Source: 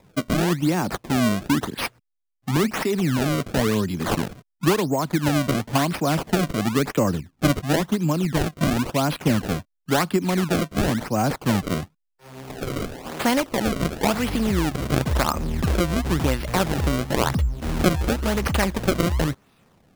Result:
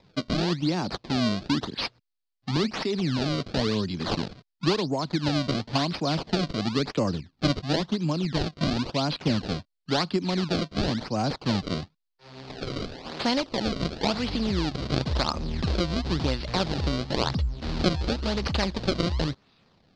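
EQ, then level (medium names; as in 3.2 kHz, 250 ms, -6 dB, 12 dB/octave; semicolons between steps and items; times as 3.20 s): dynamic bell 1.8 kHz, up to -4 dB, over -36 dBFS, Q 1; four-pole ladder low-pass 5 kHz, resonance 60%; +6.0 dB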